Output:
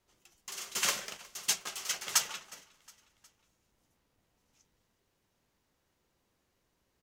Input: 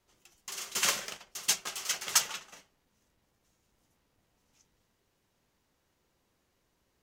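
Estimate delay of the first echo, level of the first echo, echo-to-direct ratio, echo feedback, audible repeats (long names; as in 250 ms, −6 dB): 362 ms, −24.0 dB, −22.5 dB, 54%, 3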